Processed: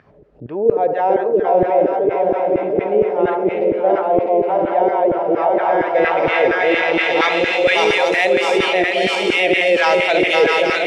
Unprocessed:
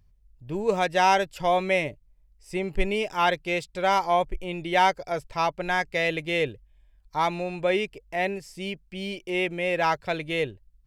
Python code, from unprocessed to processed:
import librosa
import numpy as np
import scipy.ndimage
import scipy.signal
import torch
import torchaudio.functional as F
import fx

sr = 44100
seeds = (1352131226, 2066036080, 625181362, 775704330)

y = fx.reverse_delay_fb(x, sr, ms=327, feedback_pct=69, wet_db=-3.0)
y = y + 10.0 ** (-7.5 / 20.0) * np.pad(y, (int(818 * sr / 1000.0), 0))[:len(y)]
y = fx.filter_lfo_highpass(y, sr, shape='saw_down', hz=4.3, low_hz=350.0, high_hz=1600.0, q=2.4)
y = fx.graphic_eq(y, sr, hz=(125, 250, 1000), db=(5, 4, -12))
y = fx.echo_wet_bandpass(y, sr, ms=71, feedback_pct=57, hz=720.0, wet_db=-11.5)
y = fx.filter_sweep_lowpass(y, sr, from_hz=590.0, to_hz=7400.0, start_s=5.26, end_s=8.07, q=0.76)
y = fx.high_shelf(y, sr, hz=5900.0, db=8.5, at=(5.86, 8.33))
y = fx.env_flatten(y, sr, amount_pct=50)
y = y * librosa.db_to_amplitude(5.5)